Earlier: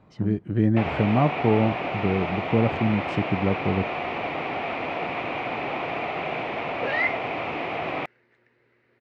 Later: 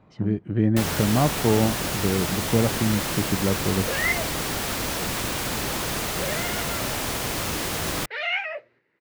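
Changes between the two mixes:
first sound: remove speaker cabinet 180–2500 Hz, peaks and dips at 200 Hz -7 dB, 720 Hz +9 dB, 1600 Hz -8 dB, 2400 Hz +8 dB; second sound: entry -2.95 s

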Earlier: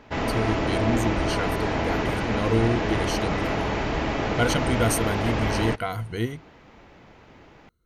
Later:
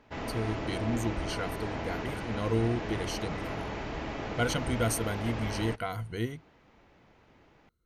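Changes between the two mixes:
speech -5.5 dB; background -10.5 dB

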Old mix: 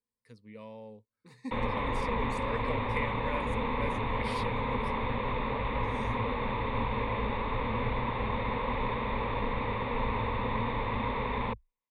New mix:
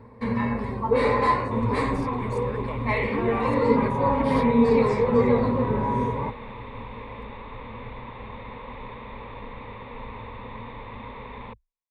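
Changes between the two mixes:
first sound: unmuted; second sound -7.0 dB

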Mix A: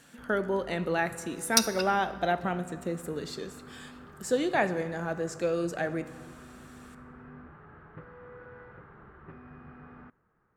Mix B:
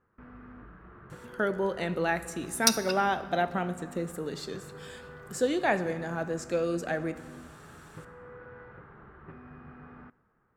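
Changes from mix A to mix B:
speech: entry +1.10 s; background: send +7.0 dB

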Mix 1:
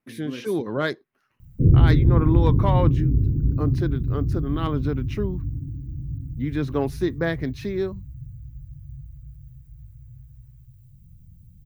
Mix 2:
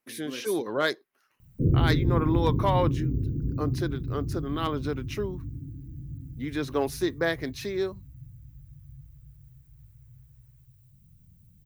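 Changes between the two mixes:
speech: add tone controls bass -13 dB, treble +8 dB; background: add low shelf 160 Hz -11.5 dB

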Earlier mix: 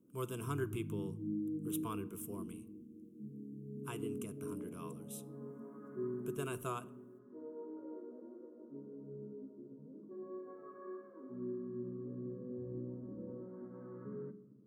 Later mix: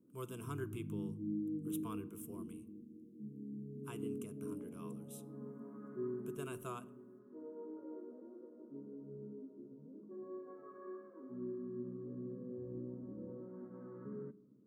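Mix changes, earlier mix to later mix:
speech -5.0 dB; background: send -8.0 dB

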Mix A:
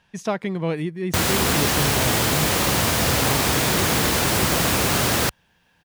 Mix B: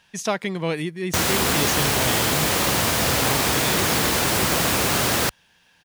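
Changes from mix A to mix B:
speech: add high shelf 2300 Hz +10 dB; master: add low shelf 180 Hz -4.5 dB

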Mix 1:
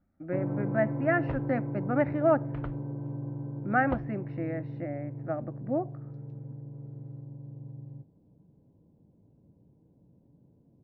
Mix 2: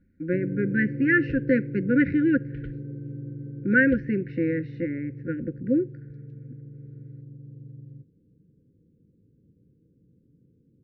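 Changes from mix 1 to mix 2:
speech +9.5 dB; master: add brick-wall FIR band-stop 540–1400 Hz

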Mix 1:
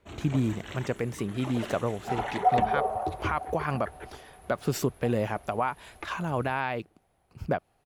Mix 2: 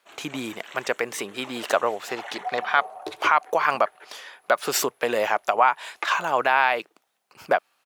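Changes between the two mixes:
speech +12.0 dB; second sound -6.5 dB; master: add HPF 700 Hz 12 dB/oct

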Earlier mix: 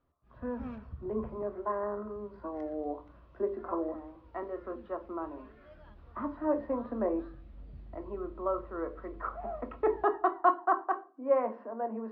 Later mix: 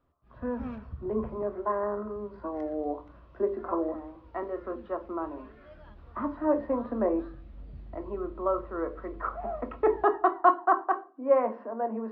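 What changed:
speech +4.0 dB; background +3.5 dB

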